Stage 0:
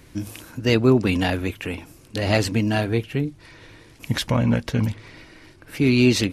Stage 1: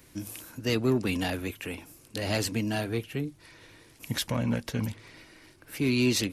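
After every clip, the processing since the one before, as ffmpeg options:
ffmpeg -i in.wav -filter_complex "[0:a]highshelf=frequency=8200:gain=11.5,acrossover=split=310|3200[link_01][link_02][link_03];[link_02]asoftclip=type=tanh:threshold=-18dB[link_04];[link_01][link_04][link_03]amix=inputs=3:normalize=0,lowshelf=frequency=130:gain=-5.5,volume=-6.5dB" out.wav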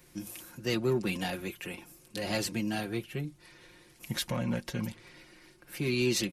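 ffmpeg -i in.wav -af "aecho=1:1:5.6:0.63,volume=-4dB" out.wav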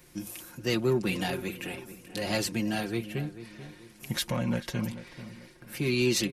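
ffmpeg -i in.wav -filter_complex "[0:a]asplit=2[link_01][link_02];[link_02]adelay=438,lowpass=frequency=2200:poles=1,volume=-13dB,asplit=2[link_03][link_04];[link_04]adelay=438,lowpass=frequency=2200:poles=1,volume=0.38,asplit=2[link_05][link_06];[link_06]adelay=438,lowpass=frequency=2200:poles=1,volume=0.38,asplit=2[link_07][link_08];[link_08]adelay=438,lowpass=frequency=2200:poles=1,volume=0.38[link_09];[link_01][link_03][link_05][link_07][link_09]amix=inputs=5:normalize=0,volume=2.5dB" out.wav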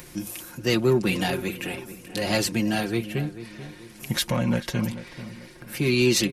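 ffmpeg -i in.wav -af "acompressor=mode=upward:threshold=-44dB:ratio=2.5,volume=5.5dB" out.wav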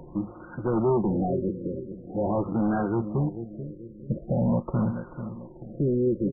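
ffmpeg -i in.wav -af "aeval=exprs='0.316*(cos(1*acos(clip(val(0)/0.316,-1,1)))-cos(1*PI/2))+0.0562*(cos(5*acos(clip(val(0)/0.316,-1,1)))-cos(5*PI/2))':channel_layout=same,acrusher=bits=2:mode=log:mix=0:aa=0.000001,afftfilt=real='re*lt(b*sr/1024,570*pow(1600/570,0.5+0.5*sin(2*PI*0.45*pts/sr)))':imag='im*lt(b*sr/1024,570*pow(1600/570,0.5+0.5*sin(2*PI*0.45*pts/sr)))':win_size=1024:overlap=0.75,volume=-2.5dB" out.wav

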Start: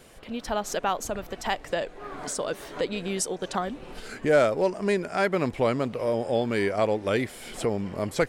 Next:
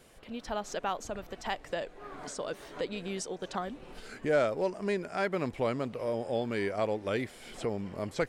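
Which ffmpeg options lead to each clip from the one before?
ffmpeg -i in.wav -filter_complex "[0:a]acrossover=split=7600[link_01][link_02];[link_02]acompressor=threshold=-54dB:ratio=4:attack=1:release=60[link_03];[link_01][link_03]amix=inputs=2:normalize=0,volume=-6.5dB" out.wav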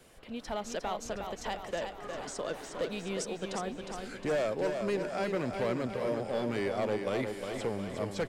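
ffmpeg -i in.wav -filter_complex "[0:a]acrossover=split=160|810|3100[link_01][link_02][link_03][link_04];[link_03]alimiter=level_in=7.5dB:limit=-24dB:level=0:latency=1,volume=-7.5dB[link_05];[link_01][link_02][link_05][link_04]amix=inputs=4:normalize=0,asoftclip=type=hard:threshold=-26.5dB,aecho=1:1:359|718|1077|1436|1795|2154|2513:0.501|0.281|0.157|0.088|0.0493|0.0276|0.0155" out.wav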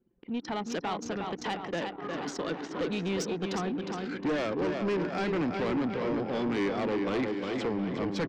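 ffmpeg -i in.wav -af "highpass=130,equalizer=frequency=170:width_type=q:width=4:gain=6,equalizer=frequency=300:width_type=q:width=4:gain=9,equalizer=frequency=610:width_type=q:width=4:gain=-9,lowpass=frequency=6100:width=0.5412,lowpass=frequency=6100:width=1.3066,asoftclip=type=tanh:threshold=-31.5dB,anlmdn=0.0398,volume=6.5dB" out.wav

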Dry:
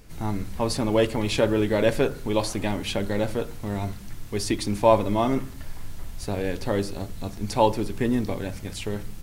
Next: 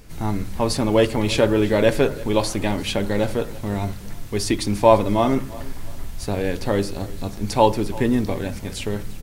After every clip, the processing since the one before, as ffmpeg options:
ffmpeg -i in.wav -af "aecho=1:1:341|682|1023:0.1|0.035|0.0123,volume=4dB" out.wav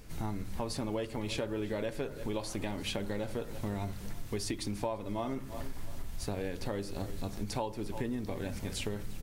ffmpeg -i in.wav -af "acompressor=threshold=-26dB:ratio=12,volume=-5.5dB" out.wav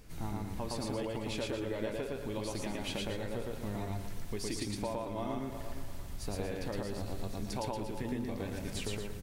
ffmpeg -i in.wav -af "aecho=1:1:113.7|233.2:0.891|0.355,volume=-3.5dB" out.wav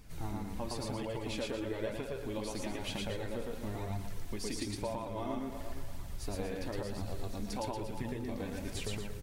ffmpeg -i in.wav -af "flanger=delay=0.8:depth=3.7:regen=-38:speed=1:shape=triangular,volume=3dB" out.wav

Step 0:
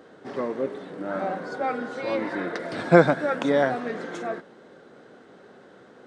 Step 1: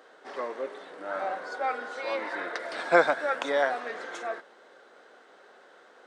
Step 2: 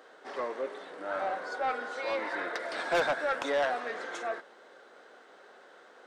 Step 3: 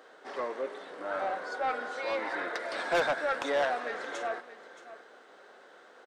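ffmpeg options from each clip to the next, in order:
ffmpeg -i in.wav -af "highpass=640" out.wav
ffmpeg -i in.wav -af "asoftclip=type=tanh:threshold=-22dB" out.wav
ffmpeg -i in.wav -af "aecho=1:1:624:0.188" out.wav

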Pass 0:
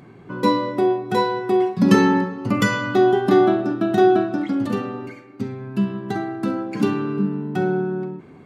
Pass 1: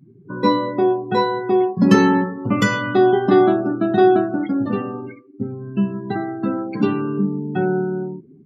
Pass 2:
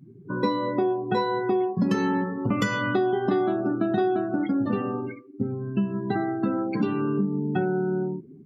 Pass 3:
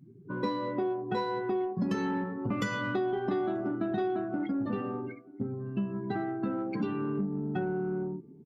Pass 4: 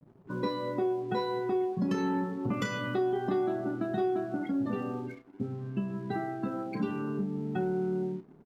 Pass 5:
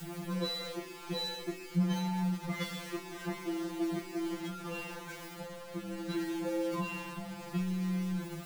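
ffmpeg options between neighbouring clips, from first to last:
ffmpeg -i in.wav -af "afftdn=noise_reduction=34:noise_floor=-34,volume=1.5dB" out.wav
ffmpeg -i in.wav -af "acompressor=threshold=-21dB:ratio=6" out.wav
ffmpeg -i in.wav -filter_complex "[0:a]asplit=2[link_01][link_02];[link_02]asoftclip=type=tanh:threshold=-27dB,volume=-7dB[link_03];[link_01][link_03]amix=inputs=2:normalize=0,asplit=2[link_04][link_05];[link_05]adelay=932.9,volume=-25dB,highshelf=frequency=4000:gain=-21[link_06];[link_04][link_06]amix=inputs=2:normalize=0,volume=-8.5dB" out.wav
ffmpeg -i in.wav -filter_complex "[0:a]aeval=exprs='sgn(val(0))*max(abs(val(0))-0.00133,0)':channel_layout=same,asplit=2[link_01][link_02];[link_02]adelay=32,volume=-9dB[link_03];[link_01][link_03]amix=inputs=2:normalize=0" out.wav
ffmpeg -i in.wav -af "aeval=exprs='val(0)+0.5*0.02*sgn(val(0))':channel_layout=same,afftfilt=real='re*2.83*eq(mod(b,8),0)':imag='im*2.83*eq(mod(b,8),0)':win_size=2048:overlap=0.75" out.wav

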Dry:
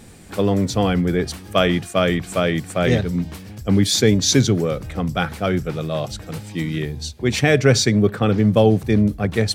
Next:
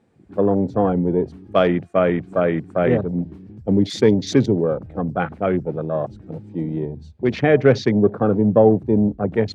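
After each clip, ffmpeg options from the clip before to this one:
ffmpeg -i in.wav -af "afwtdn=0.0398,bandpass=frequency=490:width_type=q:width=0.51:csg=0,volume=2.5dB" out.wav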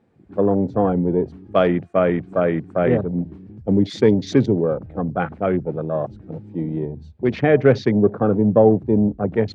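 ffmpeg -i in.wav -af "aemphasis=mode=reproduction:type=50kf" out.wav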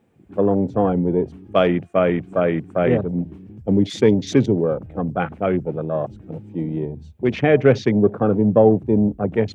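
ffmpeg -i in.wav -af "aexciter=amount=1.8:drive=2.7:freq=2400" out.wav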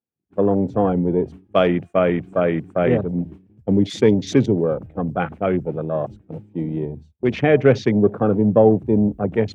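ffmpeg -i in.wav -af "agate=range=-33dB:threshold=-30dB:ratio=3:detection=peak" out.wav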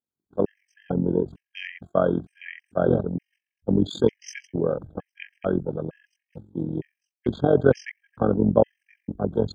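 ffmpeg -i in.wav -af "tremolo=f=45:d=0.824,afftfilt=real='re*gt(sin(2*PI*1.1*pts/sr)*(1-2*mod(floor(b*sr/1024/1600),2)),0)':imag='im*gt(sin(2*PI*1.1*pts/sr)*(1-2*mod(floor(b*sr/1024/1600),2)),0)':win_size=1024:overlap=0.75" out.wav

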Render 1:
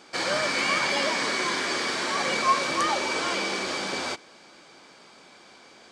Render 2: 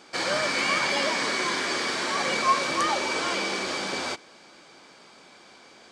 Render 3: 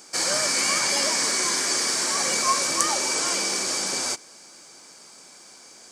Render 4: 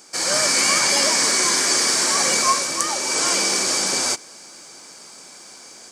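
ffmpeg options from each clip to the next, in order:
ffmpeg -i in.wav -af anull out.wav
ffmpeg -i in.wav -af "aexciter=amount=6.7:drive=5:freq=5100,aeval=exprs='1.12*(cos(1*acos(clip(val(0)/1.12,-1,1)))-cos(1*PI/2))+0.0398*(cos(2*acos(clip(val(0)/1.12,-1,1)))-cos(2*PI/2))+0.00708*(cos(7*acos(clip(val(0)/1.12,-1,1)))-cos(7*PI/2))':channel_layout=same,volume=-1.5dB" out.wav
ffmpeg -i in.wav -af "dynaudnorm=framelen=190:gausssize=3:maxgain=5.5dB" out.wav

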